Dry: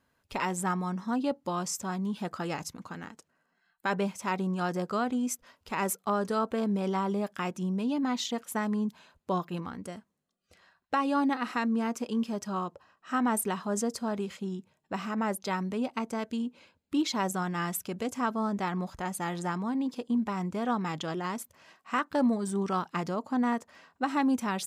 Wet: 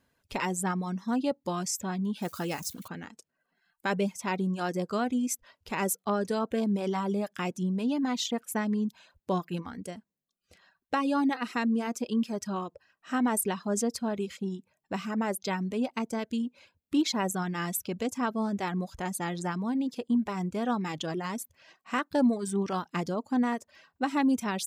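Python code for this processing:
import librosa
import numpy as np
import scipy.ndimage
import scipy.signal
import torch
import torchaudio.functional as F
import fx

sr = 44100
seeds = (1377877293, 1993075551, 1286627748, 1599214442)

y = fx.crossing_spikes(x, sr, level_db=-37.0, at=(2.22, 2.88))
y = fx.peak_eq(y, sr, hz=1100.0, db=-4.5, octaves=1.1)
y = fx.notch(y, sr, hz=1300.0, q=24.0)
y = fx.dereverb_blind(y, sr, rt60_s=0.59)
y = y * 10.0 ** (2.5 / 20.0)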